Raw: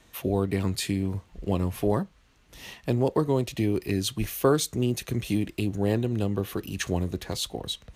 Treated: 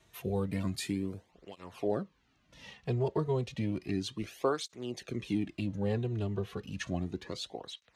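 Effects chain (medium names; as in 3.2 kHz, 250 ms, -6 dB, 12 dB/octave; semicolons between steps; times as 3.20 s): low-pass 12 kHz 12 dB/octave, from 1.31 s 5.6 kHz; cancelling through-zero flanger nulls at 0.32 Hz, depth 4 ms; trim -4.5 dB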